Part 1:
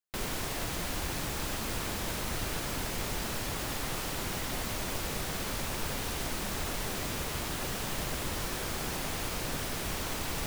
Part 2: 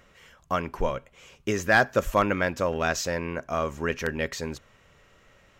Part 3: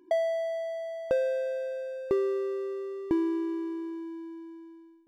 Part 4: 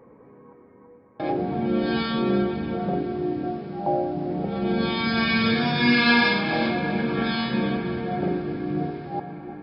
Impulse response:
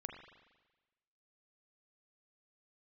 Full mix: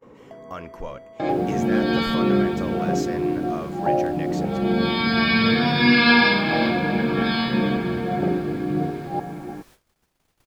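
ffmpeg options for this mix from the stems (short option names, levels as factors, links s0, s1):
-filter_complex "[0:a]adelay=1150,volume=0.112[s0];[1:a]alimiter=limit=0.141:level=0:latency=1,volume=0.501[s1];[2:a]acompressor=threshold=0.0178:ratio=6,adelay=200,volume=0.422[s2];[3:a]volume=1.41[s3];[s0][s1][s2][s3]amix=inputs=4:normalize=0,agate=range=0.0501:threshold=0.00316:ratio=16:detection=peak"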